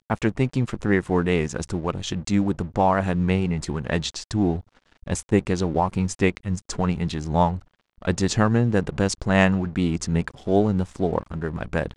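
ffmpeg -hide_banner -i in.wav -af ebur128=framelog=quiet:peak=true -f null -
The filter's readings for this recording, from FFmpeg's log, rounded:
Integrated loudness:
  I:         -23.7 LUFS
  Threshold: -33.9 LUFS
Loudness range:
  LRA:         2.6 LU
  Threshold: -43.8 LUFS
  LRA low:   -24.9 LUFS
  LRA high:  -22.3 LUFS
True peak:
  Peak:       -1.8 dBFS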